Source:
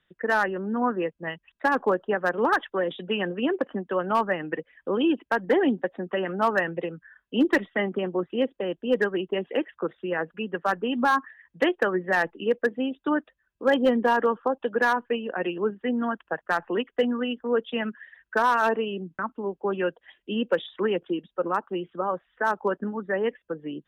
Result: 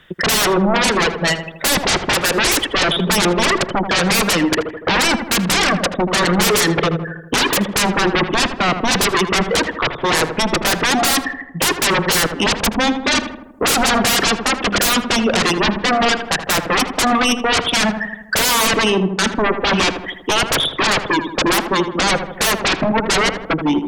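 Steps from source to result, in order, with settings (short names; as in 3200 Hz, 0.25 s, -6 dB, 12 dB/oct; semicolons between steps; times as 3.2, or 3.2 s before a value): reverb removal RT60 1.3 s; sine folder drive 20 dB, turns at -12.5 dBFS; darkening echo 80 ms, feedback 60%, low-pass 1500 Hz, level -7.5 dB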